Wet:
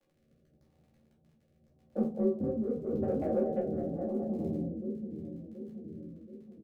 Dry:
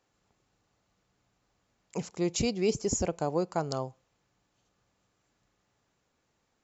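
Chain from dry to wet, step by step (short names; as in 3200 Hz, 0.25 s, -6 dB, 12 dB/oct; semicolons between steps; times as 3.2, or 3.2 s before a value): frequency shift +36 Hz; on a send: split-band echo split 350 Hz, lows 0.728 s, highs 0.209 s, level -5 dB; on the sum: compressor 6:1, threshold -32 dBFS, peak gain reduction 10.5 dB; rippled Chebyshev low-pass 780 Hz, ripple 3 dB; added harmonics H 5 -26 dB, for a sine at -24 dBFS; crackle 40/s -51 dBFS; doubler 13 ms -4.5 dB; shoebox room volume 230 m³, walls furnished, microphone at 2.4 m; rotary speaker horn 0.85 Hz; mismatched tape noise reduction decoder only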